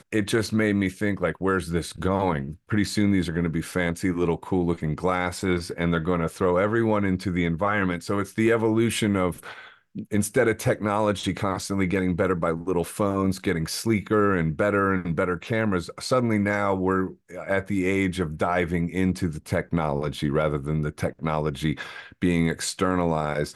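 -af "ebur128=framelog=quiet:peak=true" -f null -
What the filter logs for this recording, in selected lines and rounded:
Integrated loudness:
  I:         -24.8 LUFS
  Threshold: -34.9 LUFS
Loudness range:
  LRA:         2.2 LU
  Threshold: -44.9 LUFS
  LRA low:   -26.0 LUFS
  LRA high:  -23.8 LUFS
True peak:
  Peak:      -10.2 dBFS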